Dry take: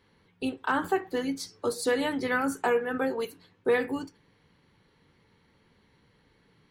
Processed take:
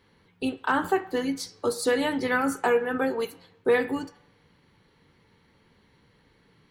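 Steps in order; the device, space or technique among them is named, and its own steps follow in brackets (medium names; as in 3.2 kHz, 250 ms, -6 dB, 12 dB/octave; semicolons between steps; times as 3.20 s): filtered reverb send (on a send: high-pass 560 Hz 24 dB/octave + low-pass 4.5 kHz 12 dB/octave + reverberation RT60 0.90 s, pre-delay 4 ms, DRR 14 dB); on the sum: trim +2.5 dB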